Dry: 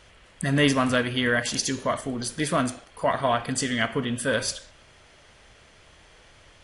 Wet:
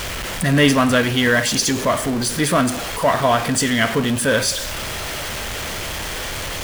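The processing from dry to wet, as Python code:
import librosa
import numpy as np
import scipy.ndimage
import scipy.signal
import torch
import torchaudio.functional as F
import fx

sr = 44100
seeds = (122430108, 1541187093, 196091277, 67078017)

y = x + 0.5 * 10.0 ** (-26.5 / 20.0) * np.sign(x)
y = y * 10.0 ** (5.0 / 20.0)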